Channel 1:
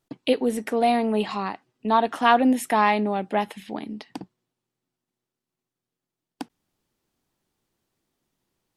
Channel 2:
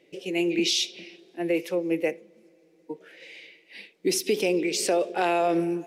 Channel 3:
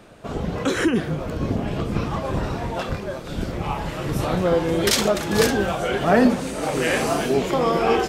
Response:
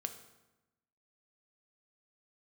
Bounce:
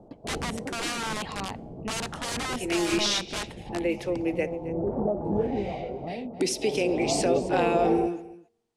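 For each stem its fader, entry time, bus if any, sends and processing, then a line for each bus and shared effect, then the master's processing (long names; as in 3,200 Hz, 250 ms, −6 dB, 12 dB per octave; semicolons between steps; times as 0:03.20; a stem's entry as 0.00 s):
−7.5 dB, 0.00 s, send −15 dB, no echo send, parametric band 860 Hz +3 dB 0.3 octaves; wrap-around overflow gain 19.5 dB
−2.0 dB, 2.35 s, no send, echo send −17.5 dB, noise gate −50 dBFS, range −19 dB
−2.5 dB, 0.00 s, send −15.5 dB, echo send −20 dB, Chebyshev low-pass filter 840 Hz, order 4; downward compressor, threshold −21 dBFS, peak gain reduction 9.5 dB; automatic ducking −18 dB, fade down 0.95 s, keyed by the first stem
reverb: on, RT60 1.0 s, pre-delay 3 ms
echo: single-tap delay 267 ms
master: low-pass filter 10,000 Hz 24 dB per octave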